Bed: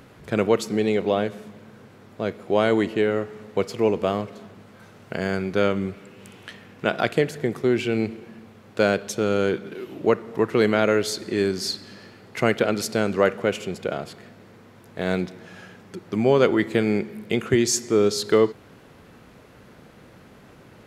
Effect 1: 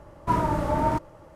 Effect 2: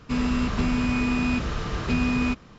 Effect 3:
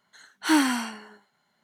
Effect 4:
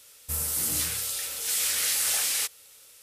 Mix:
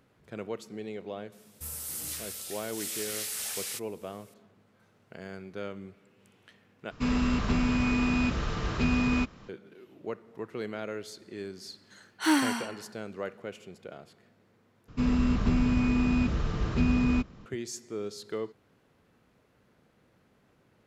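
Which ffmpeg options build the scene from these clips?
ffmpeg -i bed.wav -i cue0.wav -i cue1.wav -i cue2.wav -i cue3.wav -filter_complex "[2:a]asplit=2[link_01][link_02];[0:a]volume=-17dB[link_03];[link_02]lowshelf=frequency=470:gain=8[link_04];[link_03]asplit=3[link_05][link_06][link_07];[link_05]atrim=end=6.914[link_08];[link_01]atrim=end=2.58,asetpts=PTS-STARTPTS,volume=-2.5dB[link_09];[link_06]atrim=start=9.486:end=14.884[link_10];[link_04]atrim=end=2.58,asetpts=PTS-STARTPTS,volume=-7.5dB[link_11];[link_07]atrim=start=17.456[link_12];[4:a]atrim=end=3.02,asetpts=PTS-STARTPTS,volume=-9.5dB,afade=type=in:duration=0.004:curve=hsin,afade=type=out:start_time=3.016:duration=0.004:curve=hsin,adelay=1320[link_13];[3:a]atrim=end=1.63,asetpts=PTS-STARTPTS,volume=-3.5dB,afade=type=in:duration=0.004:curve=hsin,afade=type=out:start_time=1.626:duration=0.004:curve=hsin,adelay=11770[link_14];[link_08][link_09]acrossfade=duration=0.004:curve1=hsin:curve2=hsin[link_15];[link_15][link_10]acrossfade=duration=0.004:curve1=hsin:curve2=hsin[link_16];[link_16][link_11]acrossfade=duration=0.004:curve1=hsin:curve2=hsin[link_17];[link_17][link_12]acrossfade=duration=0.004:curve1=hsin:curve2=hsin[link_18];[link_18][link_13][link_14]amix=inputs=3:normalize=0" out.wav

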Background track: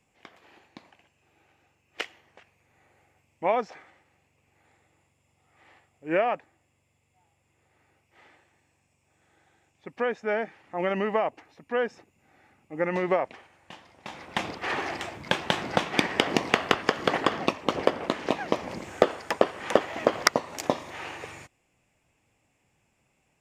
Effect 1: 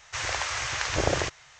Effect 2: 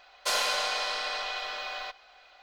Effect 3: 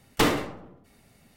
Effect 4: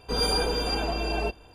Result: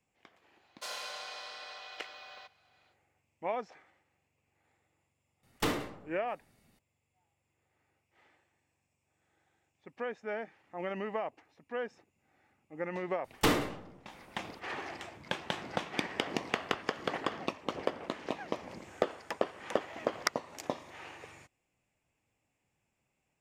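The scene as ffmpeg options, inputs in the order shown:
ffmpeg -i bed.wav -i cue0.wav -i cue1.wav -i cue2.wav -filter_complex "[3:a]asplit=2[link_01][link_02];[0:a]volume=-10dB[link_03];[2:a]highpass=frequency=72:width=0.5412,highpass=frequency=72:width=1.3066,atrim=end=2.42,asetpts=PTS-STARTPTS,volume=-13.5dB,afade=type=in:duration=0.1,afade=type=out:start_time=2.32:duration=0.1,adelay=560[link_04];[link_01]atrim=end=1.36,asetpts=PTS-STARTPTS,volume=-9.5dB,afade=type=in:duration=0.004:curve=hsin,afade=type=out:start_time=1.356:duration=0.004:curve=hsin,adelay=5430[link_05];[link_02]atrim=end=1.36,asetpts=PTS-STARTPTS,volume=-5dB,afade=type=in:duration=0.004:curve=hsin,afade=type=out:start_time=1.356:duration=0.004:curve=hsin,adelay=13240[link_06];[link_03][link_04][link_05][link_06]amix=inputs=4:normalize=0" out.wav

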